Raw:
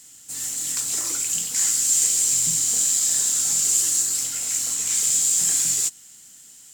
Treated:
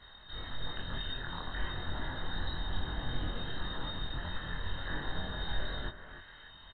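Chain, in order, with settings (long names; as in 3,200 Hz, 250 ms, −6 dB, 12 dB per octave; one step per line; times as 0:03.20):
formant filter u
on a send: echo through a band-pass that steps 300 ms, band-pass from 2,900 Hz, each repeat −0.7 octaves, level −11.5 dB
on the sum: voice inversion scrambler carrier 4,000 Hz
low-shelf EQ 68 Hz +6 dB
in parallel at +0.5 dB: brickwall limiter −47.5 dBFS, peak gain reduction 10 dB
on the sum: spectral tilt −4 dB per octave
double-tracking delay 23 ms −2 dB
one half of a high-frequency compander encoder only
level +8.5 dB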